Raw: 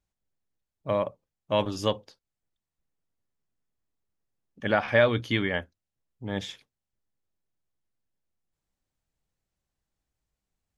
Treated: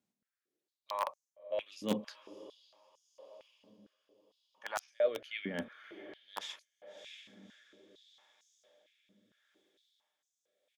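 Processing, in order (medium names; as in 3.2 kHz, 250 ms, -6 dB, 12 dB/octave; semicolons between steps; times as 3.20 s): band-stop 1.5 kHz, Q 21; reverse; compression 8:1, threshold -37 dBFS, peak gain reduction 20.5 dB; reverse; harmony voices -3 st -18 dB; echo that smears into a reverb 616 ms, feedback 56%, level -15 dB; rotary cabinet horn 0.8 Hz; in parallel at -5 dB: bit crusher 5-bit; on the sum: step-sequenced high-pass 4.4 Hz 220–6300 Hz; trim +2 dB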